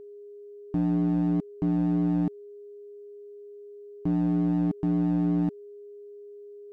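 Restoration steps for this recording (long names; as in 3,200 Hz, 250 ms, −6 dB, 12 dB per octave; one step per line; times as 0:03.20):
clipped peaks rebuilt −20.5 dBFS
notch filter 410 Hz, Q 30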